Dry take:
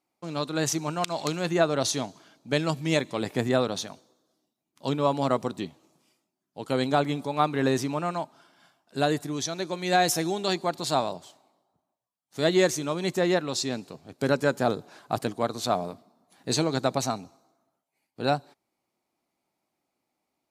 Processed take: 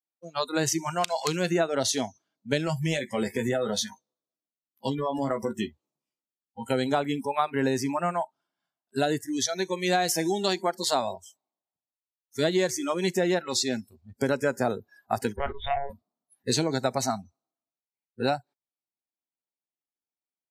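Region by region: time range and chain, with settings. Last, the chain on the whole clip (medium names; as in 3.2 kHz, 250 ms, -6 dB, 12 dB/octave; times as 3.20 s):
2.65–6.70 s: doubling 14 ms -6 dB + compression, threshold -24 dBFS
15.36–15.90 s: hard clipper -25 dBFS + monotone LPC vocoder at 8 kHz 140 Hz
whole clip: spectral noise reduction 30 dB; compression 4:1, threshold -27 dBFS; trim +5 dB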